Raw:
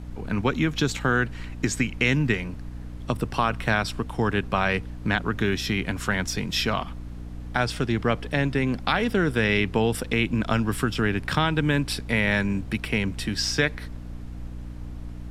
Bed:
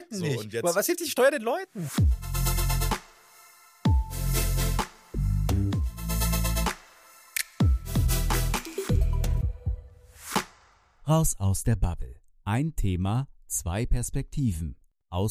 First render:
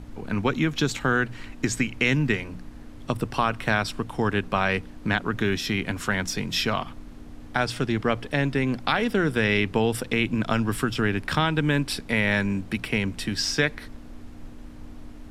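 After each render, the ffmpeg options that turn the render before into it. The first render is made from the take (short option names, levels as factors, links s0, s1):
-af "bandreject=f=60:t=h:w=6,bandreject=f=120:t=h:w=6,bandreject=f=180:t=h:w=6"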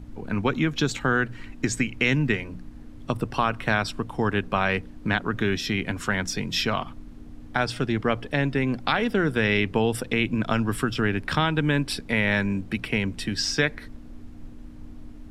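-af "afftdn=nr=6:nf=-43"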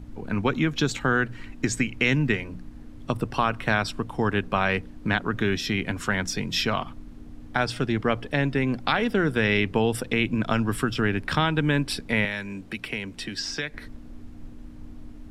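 -filter_complex "[0:a]asettb=1/sr,asplit=3[s0][s1][s2];[s0]atrim=end=12.254[s3];[s1]atrim=start=12.25:end=13.74,asetpts=PTS-STARTPTS,afade=t=in:d=0.004:c=qsin,afade=t=out:st=1.486:d=0.004:c=qsin,acrossover=split=240|2000|7300[s4][s5][s6][s7];[s4]acompressor=threshold=0.00708:ratio=3[s8];[s5]acompressor=threshold=0.0158:ratio=3[s9];[s6]acompressor=threshold=0.0282:ratio=3[s10];[s7]acompressor=threshold=0.00282:ratio=3[s11];[s8][s9][s10][s11]amix=inputs=4:normalize=0[s12];[s2]atrim=start=13.736[s13];[s3][s12]acrossfade=d=0.004:c1=hsin:c2=qsin[s14];[s14][s13]acrossfade=d=0.004:c1=qsin:c2=hsin"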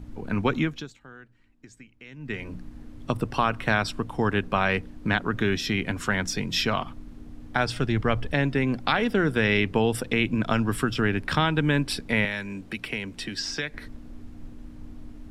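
-filter_complex "[0:a]asettb=1/sr,asplit=3[s0][s1][s2];[s0]atrim=end=7.554[s3];[s1]atrim=start=7.55:end=8.34,asetpts=PTS-STARTPTS,afade=t=in:d=0.004:c=qsin,afade=t=out:st=0.786:d=0.004:c=qsin,asubboost=boost=11.5:cutoff=140[s4];[s2]atrim=start=8.336[s5];[s3][s4]acrossfade=d=0.004:c1=hsin:c2=qsin[s6];[s6][s5]acrossfade=d=0.004:c1=qsin:c2=hsin,asplit=3[s7][s8][s9];[s7]atrim=end=0.98,asetpts=PTS-STARTPTS,afade=t=out:st=0.6:d=0.38:c=qua:silence=0.0630957[s10];[s8]atrim=start=0.98:end=2.1,asetpts=PTS-STARTPTS,volume=0.0631[s11];[s9]atrim=start=2.1,asetpts=PTS-STARTPTS,afade=t=in:d=0.38:c=qua:silence=0.0630957[s12];[s10][s11][s12]concat=n=3:v=0:a=1"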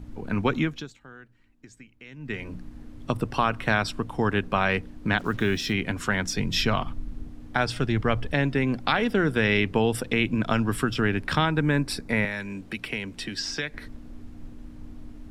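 -filter_complex "[0:a]asplit=3[s0][s1][s2];[s0]afade=t=out:st=5.18:d=0.02[s3];[s1]acrusher=bits=7:mix=0:aa=0.5,afade=t=in:st=5.18:d=0.02,afade=t=out:st=5.72:d=0.02[s4];[s2]afade=t=in:st=5.72:d=0.02[s5];[s3][s4][s5]amix=inputs=3:normalize=0,asettb=1/sr,asplit=3[s6][s7][s8];[s6]atrim=end=6.384[s9];[s7]atrim=start=6.38:end=7.28,asetpts=PTS-STARTPTS,afade=t=in:d=0.004:c=qsin,afade=t=out:st=0.896:d=0.004:c=qsin,lowshelf=f=110:g=10[s10];[s8]atrim=start=7.276[s11];[s9][s10]acrossfade=d=0.004:c1=hsin:c2=qsin[s12];[s12][s11]acrossfade=d=0.004:c1=qsin:c2=hsin,asettb=1/sr,asplit=3[s13][s14][s15];[s13]atrim=end=11.454[s16];[s14]atrim=start=11.45:end=12.4,asetpts=PTS-STARTPTS,afade=t=in:d=0.004:c=qsin,afade=t=out:st=0.946:d=0.004:c=qsin,equalizer=f=3100:t=o:w=0.39:g=-11.5[s17];[s15]atrim=start=12.396[s18];[s16][s17]acrossfade=d=0.004:c1=hsin:c2=qsin[s19];[s19][s18]acrossfade=d=0.004:c1=qsin:c2=hsin"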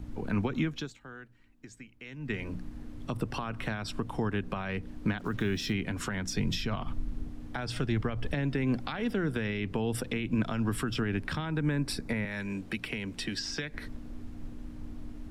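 -filter_complex "[0:a]alimiter=limit=0.119:level=0:latency=1:release=153,acrossover=split=330[s0][s1];[s1]acompressor=threshold=0.0224:ratio=6[s2];[s0][s2]amix=inputs=2:normalize=0"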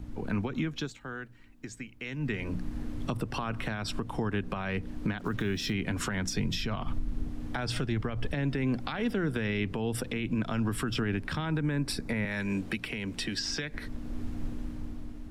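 -af "dynaudnorm=f=160:g=9:m=2.24,alimiter=limit=0.0891:level=0:latency=1:release=470"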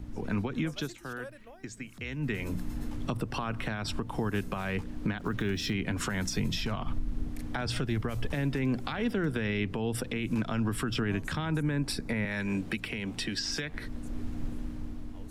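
-filter_complex "[1:a]volume=0.0596[s0];[0:a][s0]amix=inputs=2:normalize=0"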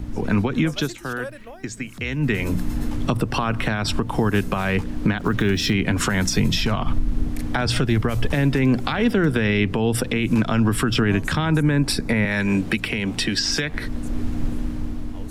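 -af "volume=3.55"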